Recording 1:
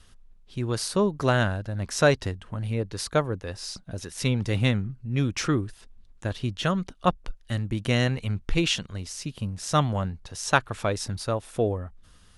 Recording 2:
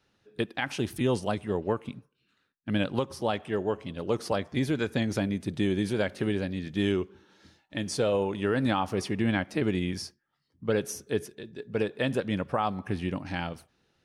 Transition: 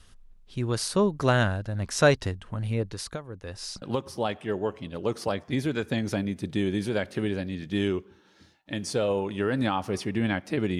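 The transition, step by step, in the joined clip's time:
recording 1
2.83–3.82 compressor 16:1, threshold -32 dBFS
3.82 switch to recording 2 from 2.86 s

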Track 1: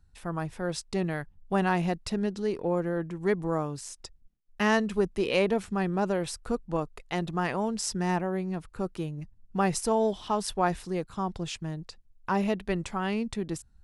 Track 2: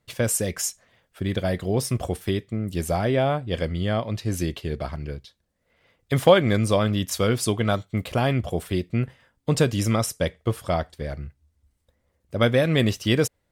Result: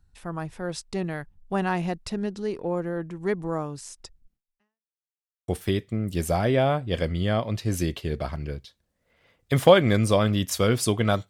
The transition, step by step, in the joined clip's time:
track 1
4.36–4.92 fade out exponential
4.92–5.48 mute
5.48 switch to track 2 from 2.08 s

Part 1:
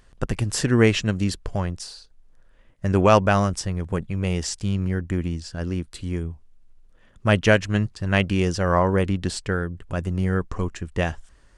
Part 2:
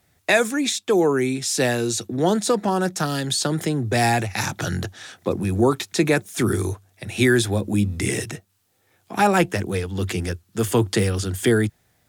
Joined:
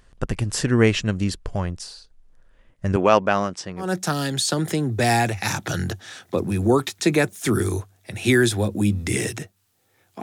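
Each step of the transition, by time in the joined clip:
part 1
2.96–3.94 BPF 220–5900 Hz
3.85 switch to part 2 from 2.78 s, crossfade 0.18 s

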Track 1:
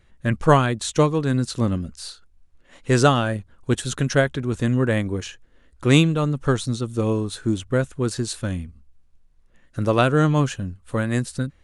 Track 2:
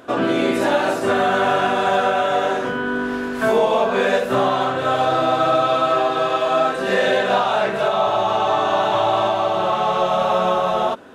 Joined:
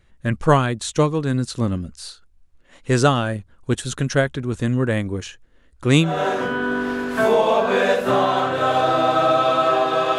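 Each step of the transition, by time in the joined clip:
track 1
6.13 switch to track 2 from 2.37 s, crossfade 0.28 s

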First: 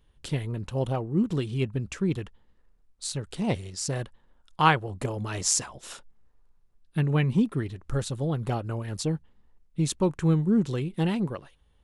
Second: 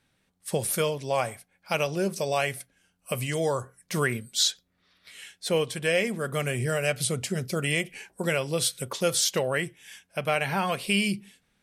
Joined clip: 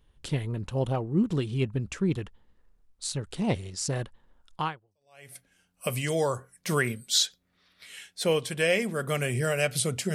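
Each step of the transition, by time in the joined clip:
first
4.98 switch to second from 2.23 s, crossfade 0.82 s exponential

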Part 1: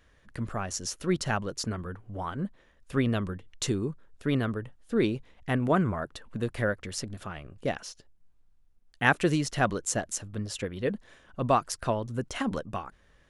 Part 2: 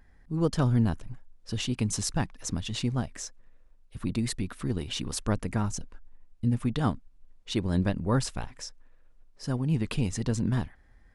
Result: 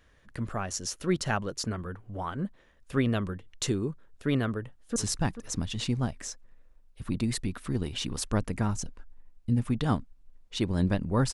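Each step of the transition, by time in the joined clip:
part 1
4.53–4.96 echo throw 0.44 s, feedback 20%, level -11.5 dB
4.96 switch to part 2 from 1.91 s

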